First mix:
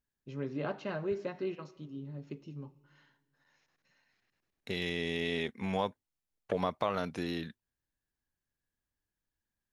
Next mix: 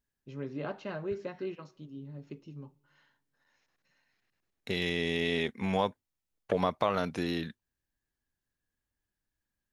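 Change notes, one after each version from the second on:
first voice: send -9.0 dB; second voice +3.5 dB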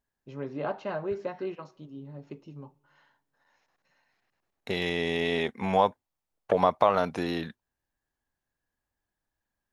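master: add bell 800 Hz +9 dB 1.5 oct

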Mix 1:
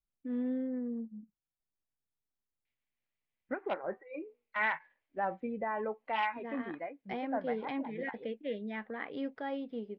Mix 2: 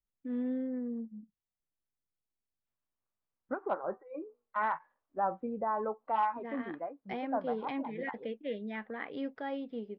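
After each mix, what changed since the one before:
second voice: add resonant high shelf 1600 Hz -9 dB, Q 3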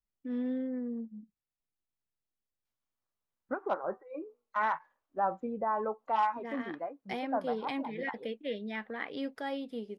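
master: remove air absorption 320 m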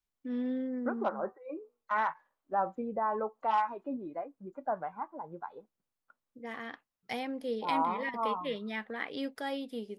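first voice: remove LPF 3200 Hz 6 dB/oct; second voice: entry -2.65 s

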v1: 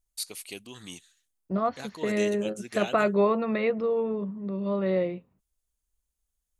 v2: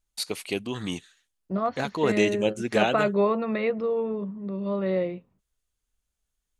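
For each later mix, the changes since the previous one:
first voice: remove pre-emphasis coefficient 0.8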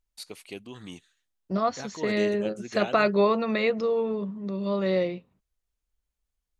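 first voice -10.5 dB; second voice: remove air absorption 370 m

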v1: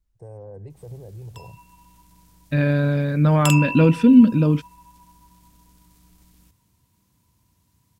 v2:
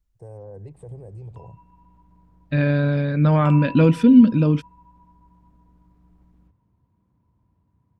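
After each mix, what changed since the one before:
background: add LPF 1000 Hz 12 dB/oct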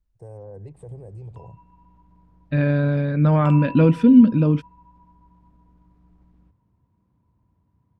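second voice: add high shelf 3200 Hz -9.5 dB

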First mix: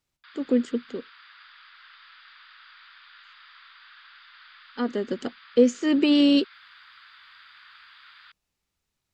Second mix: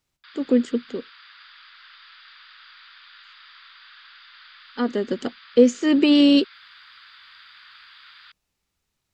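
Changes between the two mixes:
speech +3.5 dB; background: add high shelf 3600 Hz +9.5 dB

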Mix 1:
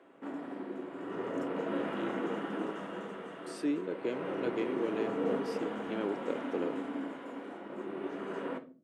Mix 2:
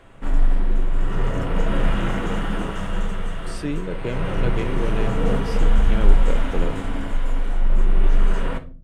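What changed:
background: add high shelf 3400 Hz +12 dB; master: remove ladder high-pass 250 Hz, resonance 45%

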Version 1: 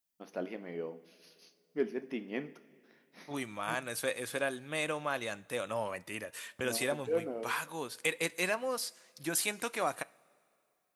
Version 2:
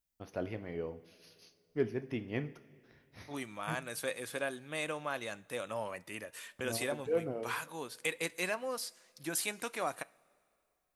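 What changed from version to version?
first voice: remove brick-wall FIR high-pass 160 Hz; second voice -3.0 dB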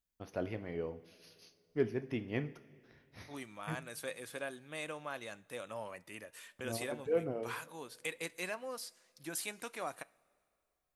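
second voice -5.0 dB

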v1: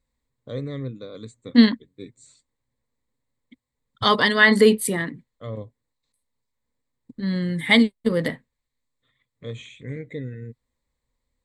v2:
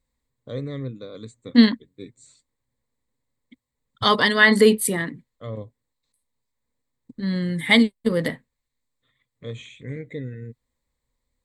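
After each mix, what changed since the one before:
second voice: add high shelf 9200 Hz +5.5 dB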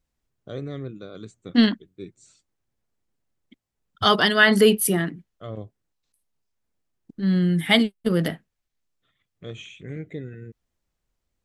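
master: remove ripple EQ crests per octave 1, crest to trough 10 dB

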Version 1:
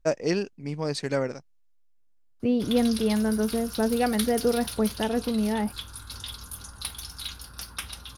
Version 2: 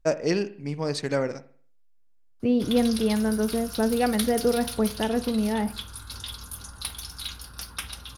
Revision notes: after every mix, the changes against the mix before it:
reverb: on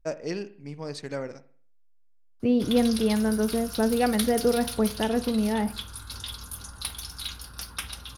first voice -7.5 dB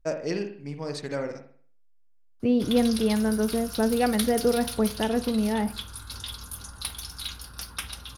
first voice: send +10.0 dB

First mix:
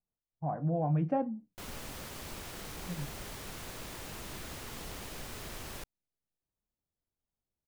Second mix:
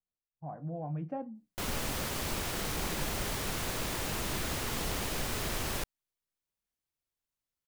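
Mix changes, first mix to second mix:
speech -7.5 dB; background +9.0 dB

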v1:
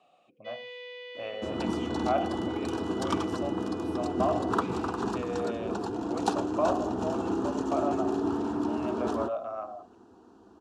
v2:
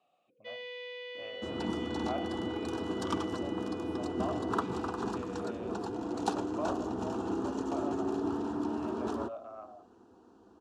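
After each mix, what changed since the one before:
speech -10.0 dB; second sound -4.0 dB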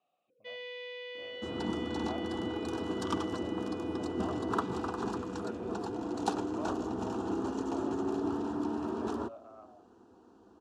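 speech -6.5 dB

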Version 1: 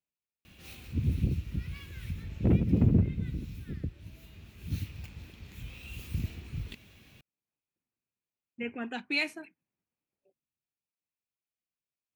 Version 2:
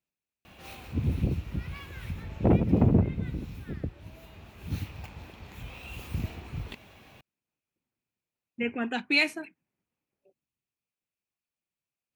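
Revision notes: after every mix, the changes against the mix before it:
speech +6.0 dB; background: add bell 810 Hz +14.5 dB 1.8 oct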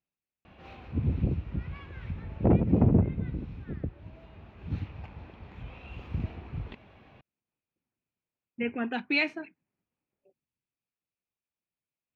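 background: add high shelf 3100 Hz -7 dB; master: add air absorption 220 m

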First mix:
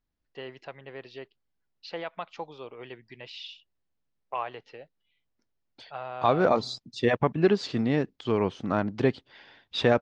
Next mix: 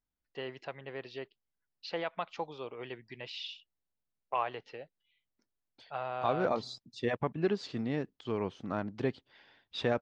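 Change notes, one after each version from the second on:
second voice -8.5 dB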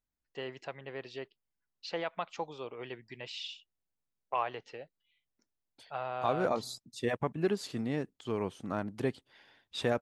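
master: remove LPF 5400 Hz 24 dB/oct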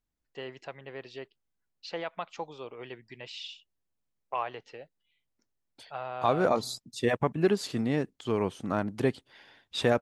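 second voice +5.5 dB

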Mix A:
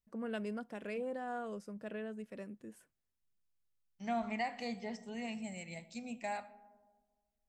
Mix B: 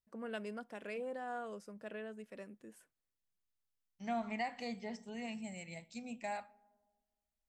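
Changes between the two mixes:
first voice: add low shelf 250 Hz -10 dB; second voice: send -10.0 dB

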